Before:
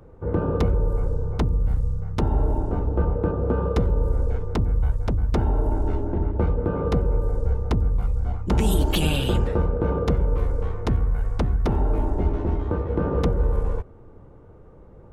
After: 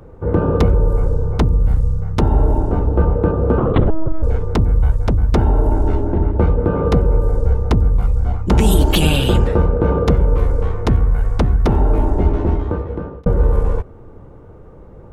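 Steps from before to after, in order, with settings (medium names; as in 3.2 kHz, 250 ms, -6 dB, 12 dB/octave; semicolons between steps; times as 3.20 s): 3.58–4.23 s: LPC vocoder at 8 kHz pitch kept; 12.48–13.26 s: fade out; trim +7.5 dB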